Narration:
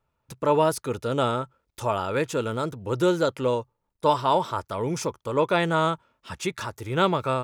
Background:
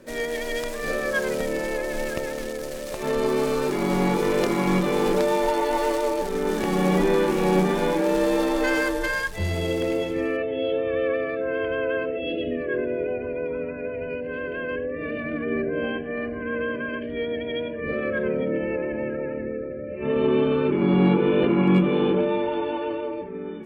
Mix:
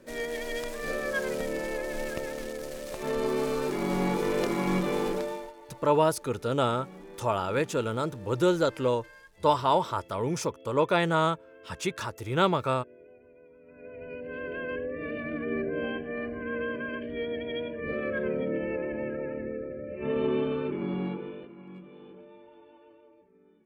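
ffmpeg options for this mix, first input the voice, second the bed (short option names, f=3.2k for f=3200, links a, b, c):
-filter_complex "[0:a]adelay=5400,volume=-2dB[a];[1:a]volume=16dB,afade=t=out:st=4.94:d=0.59:silence=0.0891251,afade=t=in:st=13.63:d=0.9:silence=0.0841395,afade=t=out:st=20.05:d=1.43:silence=0.0707946[b];[a][b]amix=inputs=2:normalize=0"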